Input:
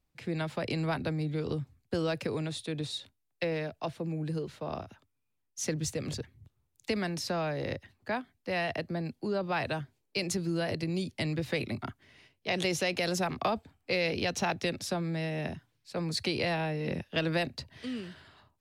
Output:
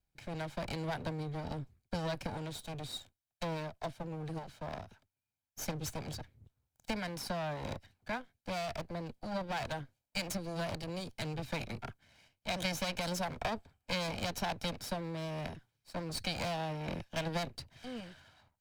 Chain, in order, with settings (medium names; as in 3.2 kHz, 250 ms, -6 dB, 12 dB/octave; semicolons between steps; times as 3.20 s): comb filter that takes the minimum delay 1.3 ms; trim -4 dB